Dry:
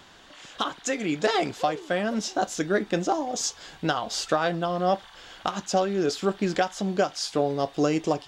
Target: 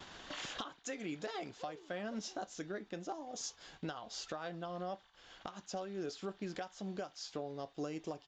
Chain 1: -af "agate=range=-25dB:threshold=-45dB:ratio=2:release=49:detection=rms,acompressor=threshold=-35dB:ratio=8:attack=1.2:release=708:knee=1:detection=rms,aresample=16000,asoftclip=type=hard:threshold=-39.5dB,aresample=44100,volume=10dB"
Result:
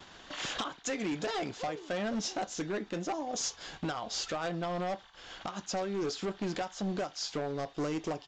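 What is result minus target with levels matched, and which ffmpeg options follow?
compressor: peak gain reduction -10 dB
-af "agate=range=-25dB:threshold=-45dB:ratio=2:release=49:detection=rms,acompressor=threshold=-46.5dB:ratio=8:attack=1.2:release=708:knee=1:detection=rms,aresample=16000,asoftclip=type=hard:threshold=-39.5dB,aresample=44100,volume=10dB"

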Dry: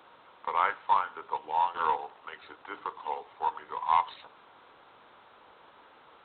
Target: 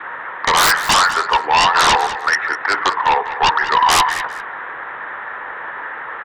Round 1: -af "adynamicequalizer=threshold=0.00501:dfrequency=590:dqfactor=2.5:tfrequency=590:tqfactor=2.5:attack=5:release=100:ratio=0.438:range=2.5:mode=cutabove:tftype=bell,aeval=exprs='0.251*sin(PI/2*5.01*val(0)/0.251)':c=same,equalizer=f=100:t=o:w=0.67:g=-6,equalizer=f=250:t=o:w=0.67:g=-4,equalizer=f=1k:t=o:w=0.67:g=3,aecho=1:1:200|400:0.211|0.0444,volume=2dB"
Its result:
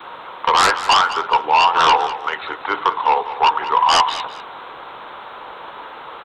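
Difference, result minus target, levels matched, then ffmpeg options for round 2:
2000 Hz band -4.5 dB
-af "adynamicequalizer=threshold=0.00501:dfrequency=590:dqfactor=2.5:tfrequency=590:tqfactor=2.5:attack=5:release=100:ratio=0.438:range=2.5:mode=cutabove:tftype=bell,lowpass=f=1.8k:t=q:w=10,aeval=exprs='0.251*sin(PI/2*5.01*val(0)/0.251)':c=same,equalizer=f=100:t=o:w=0.67:g=-6,equalizer=f=250:t=o:w=0.67:g=-4,equalizer=f=1k:t=o:w=0.67:g=3,aecho=1:1:200|400:0.211|0.0444,volume=2dB"

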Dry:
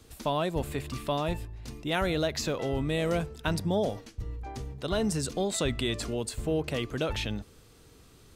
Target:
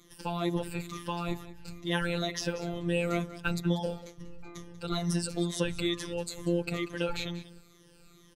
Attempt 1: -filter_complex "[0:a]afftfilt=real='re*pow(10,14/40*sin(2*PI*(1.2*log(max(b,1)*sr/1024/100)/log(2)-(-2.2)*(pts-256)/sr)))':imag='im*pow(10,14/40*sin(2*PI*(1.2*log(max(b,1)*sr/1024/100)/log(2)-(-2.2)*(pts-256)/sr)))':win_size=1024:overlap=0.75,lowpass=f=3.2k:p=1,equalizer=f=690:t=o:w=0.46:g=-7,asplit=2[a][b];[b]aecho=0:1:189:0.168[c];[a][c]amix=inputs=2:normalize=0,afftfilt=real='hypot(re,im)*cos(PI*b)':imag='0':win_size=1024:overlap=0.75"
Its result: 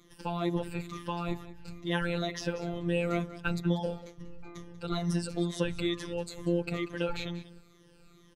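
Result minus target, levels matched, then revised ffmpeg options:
8000 Hz band -5.5 dB
-filter_complex "[0:a]afftfilt=real='re*pow(10,14/40*sin(2*PI*(1.2*log(max(b,1)*sr/1024/100)/log(2)-(-2.2)*(pts-256)/sr)))':imag='im*pow(10,14/40*sin(2*PI*(1.2*log(max(b,1)*sr/1024/100)/log(2)-(-2.2)*(pts-256)/sr)))':win_size=1024:overlap=0.75,lowpass=f=11k:p=1,equalizer=f=690:t=o:w=0.46:g=-7,asplit=2[a][b];[b]aecho=0:1:189:0.168[c];[a][c]amix=inputs=2:normalize=0,afftfilt=real='hypot(re,im)*cos(PI*b)':imag='0':win_size=1024:overlap=0.75"

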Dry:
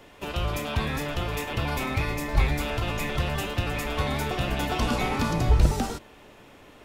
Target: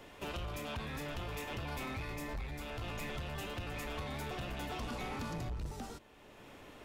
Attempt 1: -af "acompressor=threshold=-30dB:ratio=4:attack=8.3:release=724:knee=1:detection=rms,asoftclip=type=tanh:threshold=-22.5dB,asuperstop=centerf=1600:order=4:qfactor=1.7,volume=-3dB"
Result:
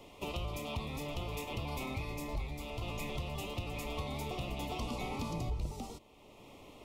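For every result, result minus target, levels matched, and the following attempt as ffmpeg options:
soft clip: distortion -13 dB; 2000 Hz band -3.5 dB
-af "acompressor=threshold=-30dB:ratio=4:attack=8.3:release=724:knee=1:detection=rms,asoftclip=type=tanh:threshold=-32dB,asuperstop=centerf=1600:order=4:qfactor=1.7,volume=-3dB"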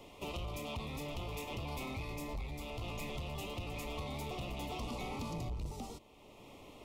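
2000 Hz band -3.5 dB
-af "acompressor=threshold=-30dB:ratio=4:attack=8.3:release=724:knee=1:detection=rms,asoftclip=type=tanh:threshold=-32dB,volume=-3dB"

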